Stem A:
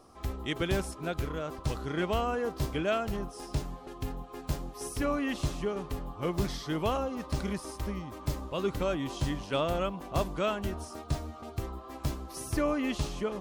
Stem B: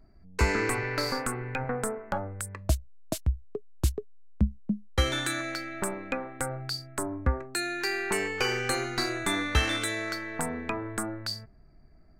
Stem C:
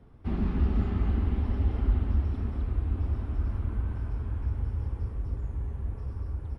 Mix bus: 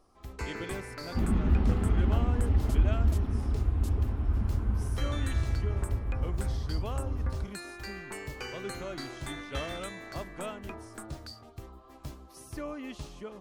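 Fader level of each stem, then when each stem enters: -9.5 dB, -12.5 dB, +1.0 dB; 0.00 s, 0.00 s, 0.90 s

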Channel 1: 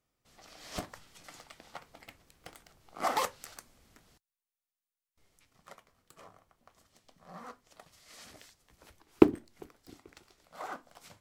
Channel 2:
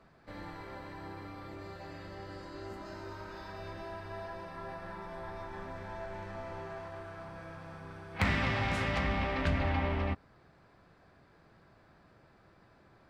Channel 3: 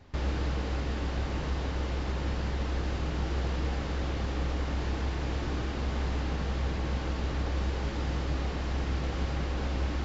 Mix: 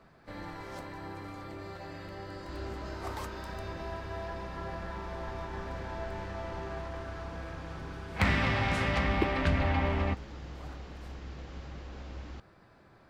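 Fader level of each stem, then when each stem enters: -12.0 dB, +2.5 dB, -12.5 dB; 0.00 s, 0.00 s, 2.35 s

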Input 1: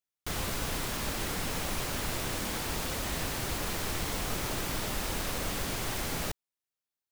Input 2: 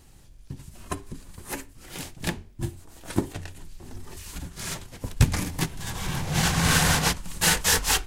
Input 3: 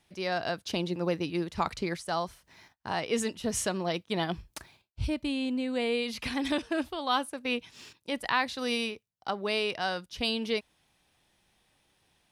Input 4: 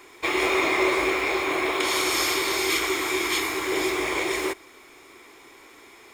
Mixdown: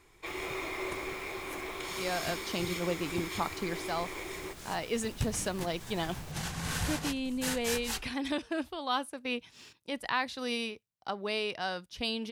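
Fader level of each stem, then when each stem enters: -16.5 dB, -14.0 dB, -3.5 dB, -15.0 dB; 0.00 s, 0.00 s, 1.80 s, 0.00 s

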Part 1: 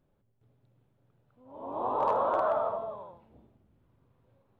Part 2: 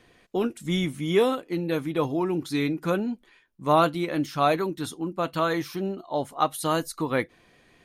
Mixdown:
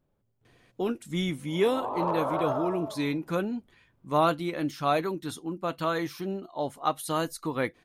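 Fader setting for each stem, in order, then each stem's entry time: -2.0 dB, -3.5 dB; 0.00 s, 0.45 s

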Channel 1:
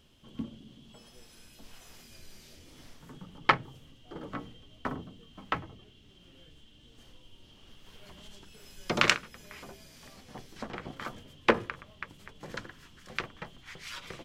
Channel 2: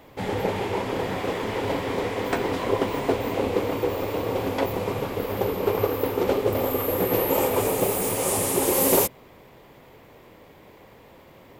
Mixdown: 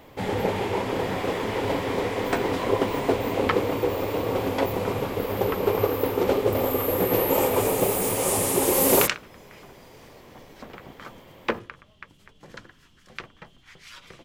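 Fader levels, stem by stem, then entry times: -3.0 dB, +0.5 dB; 0.00 s, 0.00 s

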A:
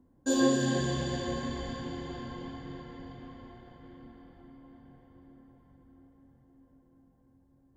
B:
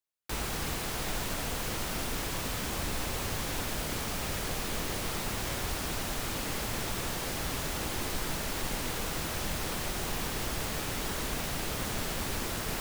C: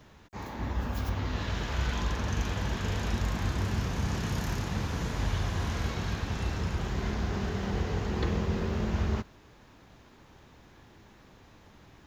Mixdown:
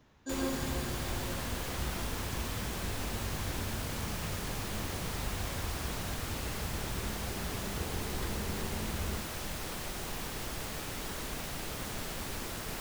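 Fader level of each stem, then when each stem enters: -10.5 dB, -5.0 dB, -9.0 dB; 0.00 s, 0.00 s, 0.00 s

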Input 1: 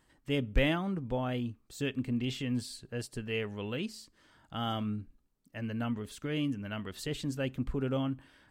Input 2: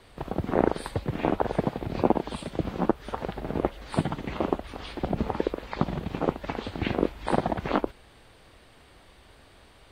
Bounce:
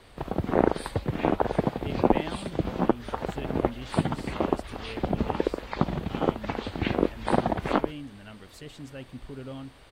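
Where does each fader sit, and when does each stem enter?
-7.5 dB, +1.0 dB; 1.55 s, 0.00 s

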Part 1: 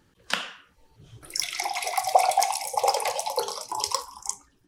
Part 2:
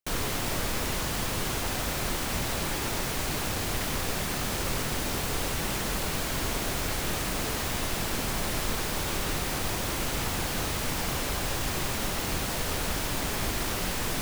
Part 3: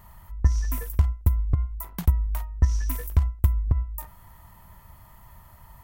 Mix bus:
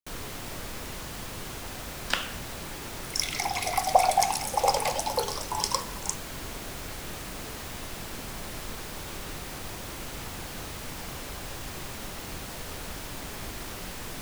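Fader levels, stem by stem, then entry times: -1.0 dB, -8.0 dB, mute; 1.80 s, 0.00 s, mute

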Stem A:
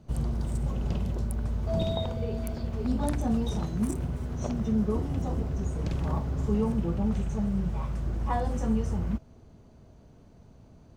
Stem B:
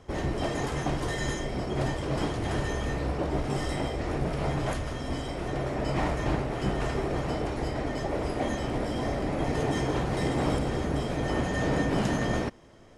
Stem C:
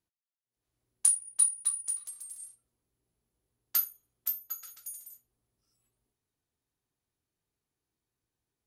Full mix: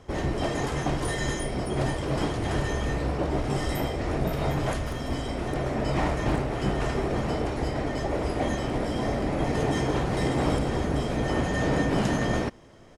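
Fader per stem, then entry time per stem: -11.0 dB, +2.0 dB, -18.5 dB; 2.45 s, 0.00 s, 0.00 s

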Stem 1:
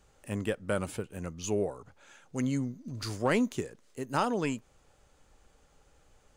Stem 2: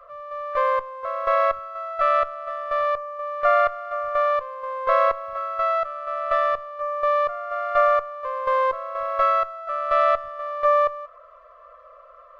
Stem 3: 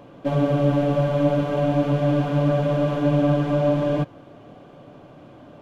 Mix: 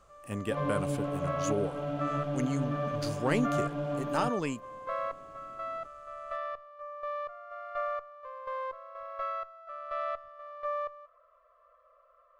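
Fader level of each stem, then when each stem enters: -2.0 dB, -15.5 dB, -13.5 dB; 0.00 s, 0.00 s, 0.25 s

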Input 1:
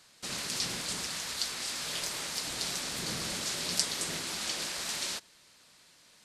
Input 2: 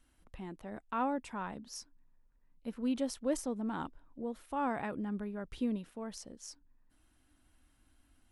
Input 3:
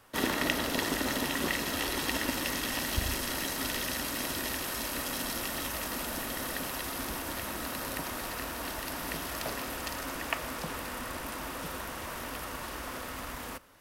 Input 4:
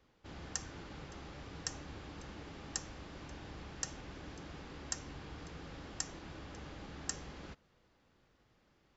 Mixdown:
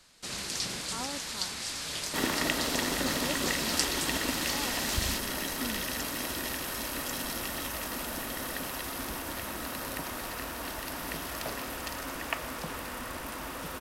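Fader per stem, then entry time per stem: -0.5 dB, -7.0 dB, -0.5 dB, -4.0 dB; 0.00 s, 0.00 s, 2.00 s, 0.00 s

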